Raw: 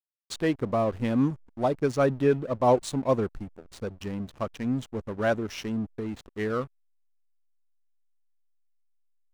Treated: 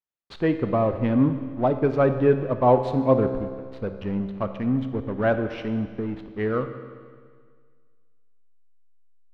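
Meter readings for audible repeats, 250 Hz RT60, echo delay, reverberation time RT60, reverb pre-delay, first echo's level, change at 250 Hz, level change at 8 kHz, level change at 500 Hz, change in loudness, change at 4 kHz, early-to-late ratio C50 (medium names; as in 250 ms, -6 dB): no echo, 1.8 s, no echo, 1.8 s, 15 ms, no echo, +4.5 dB, under -20 dB, +4.0 dB, +4.0 dB, -4.5 dB, 9.0 dB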